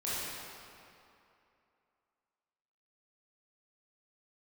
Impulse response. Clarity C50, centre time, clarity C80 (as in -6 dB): -5.5 dB, 0.184 s, -2.5 dB